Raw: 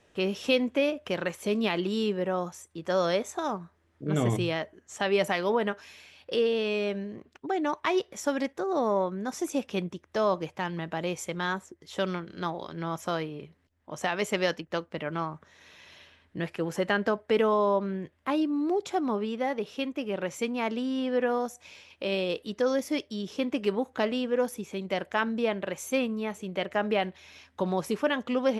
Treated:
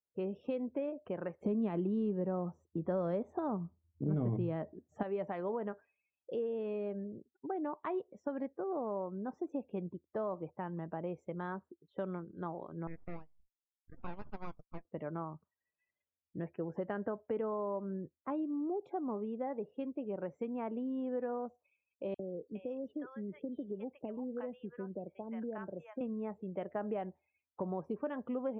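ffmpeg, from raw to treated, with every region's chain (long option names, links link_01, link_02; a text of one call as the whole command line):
ffmpeg -i in.wav -filter_complex "[0:a]asettb=1/sr,asplit=3[link_01][link_02][link_03];[link_01]atrim=end=1.414[link_04];[link_02]atrim=start=1.41:end=5.03,asetpts=PTS-STARTPTS,afade=type=in:duration=0.004:curve=qsin,afade=type=out:start_time=3.616:duration=0.004:curve=qsin,equalizer=frequency=170:width_type=o:width=2.2:gain=8.5,acontrast=32[link_05];[link_03]atrim=start=5.026[link_06];[link_04][link_05]acrossfade=duration=0.004:curve1=hsin:curve2=qsin[link_07];[link_07][link_06]acrossfade=duration=0.004:curve1=qsin:curve2=hsin,asettb=1/sr,asplit=3[link_08][link_09][link_10];[link_08]atrim=end=12.874[link_11];[link_09]atrim=start=12.87:end=14.85,asetpts=PTS-STARTPTS,afade=type=in:duration=0.004:curve=qsin,afade=type=out:start_time=1.976:duration=0.004:curve=qsin,highpass=frequency=710:width=0.5412,highpass=frequency=710:width=1.3066,aeval=exprs='abs(val(0))':channel_layout=same[link_12];[link_10]atrim=start=14.846[link_13];[link_11][link_12]acrossfade=duration=0.004:curve1=hsin:curve2=qsin[link_14];[link_14][link_13]acrossfade=duration=0.004:curve1=qsin:curve2=hsin,asettb=1/sr,asplit=3[link_15][link_16][link_17];[link_15]atrim=end=22.144[link_18];[link_16]atrim=start=22.14:end=26.01,asetpts=PTS-STARTPTS,afade=type=in:duration=0.004:curve=qsin,afade=type=out:start_time=3.866:duration=0.004:curve=qsin,acrossover=split=190|1200[link_19][link_20][link_21];[link_19]acompressor=threshold=-44dB:ratio=4[link_22];[link_20]acompressor=threshold=-33dB:ratio=4[link_23];[link_21]acompressor=threshold=-37dB:ratio=4[link_24];[link_22][link_23][link_24]amix=inputs=3:normalize=0,highshelf=frequency=5900:gain=-4.5,acrossover=split=790|4500[link_25][link_26][link_27];[link_25]adelay=50[link_28];[link_26]adelay=410[link_29];[link_28][link_29][link_27]amix=inputs=3:normalize=0,atrim=end_sample=170667[link_30];[link_17]atrim=start=26.006[link_31];[link_18][link_30]acrossfade=duration=0.004:curve1=hsin:curve2=qsin[link_32];[link_32][link_31]acrossfade=duration=0.004:curve1=qsin:curve2=hsin,afftdn=noise_reduction=35:noise_floor=-42,lowpass=1000,acompressor=threshold=-29dB:ratio=3,volume=-5.5dB" out.wav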